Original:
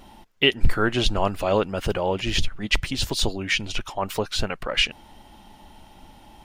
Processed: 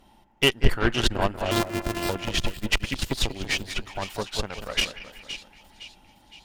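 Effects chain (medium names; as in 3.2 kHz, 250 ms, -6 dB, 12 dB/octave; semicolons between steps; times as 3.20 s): 1.51–2.09 s: sorted samples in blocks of 128 samples; two-band feedback delay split 2.3 kHz, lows 188 ms, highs 514 ms, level -6.5 dB; Chebyshev shaper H 8 -19 dB, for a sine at -3 dBFS; upward expansion 1.5:1, over -28 dBFS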